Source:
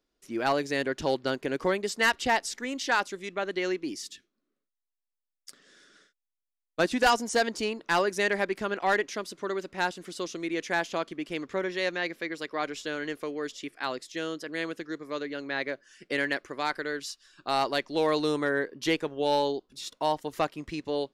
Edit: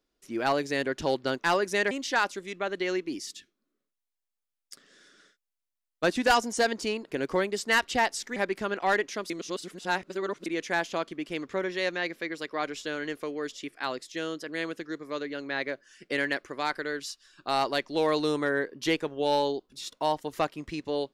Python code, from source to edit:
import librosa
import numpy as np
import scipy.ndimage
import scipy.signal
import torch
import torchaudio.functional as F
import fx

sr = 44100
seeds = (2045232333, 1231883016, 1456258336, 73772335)

y = fx.edit(x, sr, fx.swap(start_s=1.39, length_s=1.28, other_s=7.84, other_length_s=0.52),
    fx.reverse_span(start_s=9.3, length_s=1.16), tone=tone)